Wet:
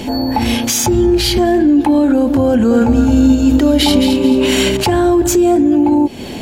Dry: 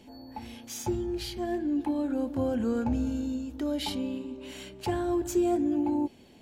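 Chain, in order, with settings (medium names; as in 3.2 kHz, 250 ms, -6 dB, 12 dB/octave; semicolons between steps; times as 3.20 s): compression, threshold -36 dBFS, peak gain reduction 13.5 dB; loudness maximiser +33.5 dB; 2.49–4.77 s: bit-crushed delay 217 ms, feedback 35%, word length 7-bit, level -7 dB; trim -4 dB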